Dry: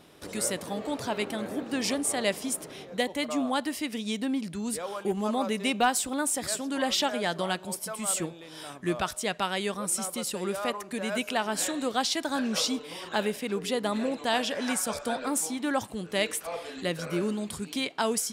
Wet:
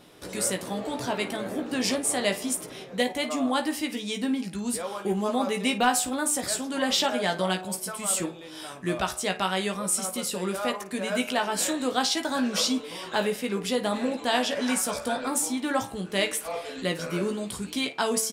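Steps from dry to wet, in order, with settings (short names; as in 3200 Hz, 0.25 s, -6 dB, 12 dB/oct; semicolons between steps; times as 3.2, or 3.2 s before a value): de-hum 73.74 Hz, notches 38; on a send: early reflections 16 ms -6 dB, 54 ms -15.5 dB; on the sum: gain +1.5 dB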